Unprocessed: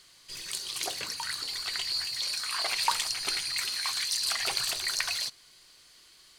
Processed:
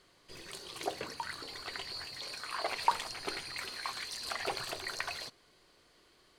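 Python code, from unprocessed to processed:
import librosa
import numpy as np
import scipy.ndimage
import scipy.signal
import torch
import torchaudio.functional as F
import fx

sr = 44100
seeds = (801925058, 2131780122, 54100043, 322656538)

y = fx.curve_eq(x, sr, hz=(130.0, 440.0, 5900.0), db=(0, 6, -14))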